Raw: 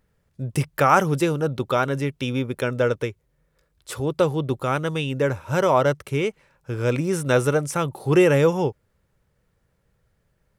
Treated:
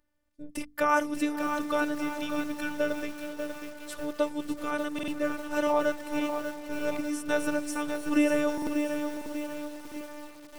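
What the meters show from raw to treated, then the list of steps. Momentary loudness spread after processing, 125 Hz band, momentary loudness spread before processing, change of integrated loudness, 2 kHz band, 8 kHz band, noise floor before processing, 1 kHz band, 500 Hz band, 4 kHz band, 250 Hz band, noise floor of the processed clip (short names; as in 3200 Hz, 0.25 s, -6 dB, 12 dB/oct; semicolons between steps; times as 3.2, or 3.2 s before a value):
14 LU, -26.5 dB, 10 LU, -8.0 dB, -4.5 dB, -5.5 dB, -69 dBFS, -7.5 dB, -9.0 dB, -6.5 dB, -3.5 dB, -51 dBFS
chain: notches 50/100/150/200/250 Hz; robotiser 296 Hz; spectral repair 2.21–2.76, 320–1100 Hz before; on a send: diffused feedback echo 0.486 s, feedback 62%, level -13.5 dB; on the sum: stuck buffer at 4.94/8.53/9.87, samples 2048, times 2; lo-fi delay 0.592 s, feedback 55%, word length 6-bit, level -7 dB; gain -5.5 dB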